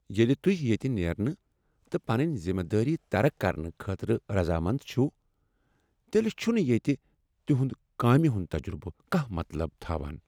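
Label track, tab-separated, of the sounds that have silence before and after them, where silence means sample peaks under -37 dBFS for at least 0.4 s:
1.920000	5.090000	sound
6.130000	6.950000	sound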